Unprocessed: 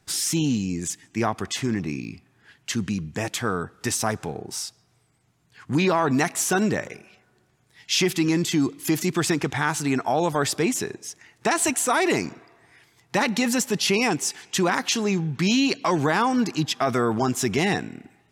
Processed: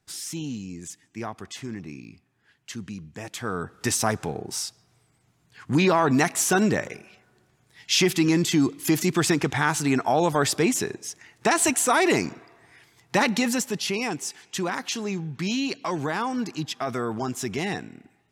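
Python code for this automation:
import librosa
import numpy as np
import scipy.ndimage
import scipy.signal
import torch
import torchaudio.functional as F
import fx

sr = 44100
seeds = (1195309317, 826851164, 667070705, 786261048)

y = fx.gain(x, sr, db=fx.line((3.23, -9.5), (3.75, 1.0), (13.26, 1.0), (13.9, -6.0)))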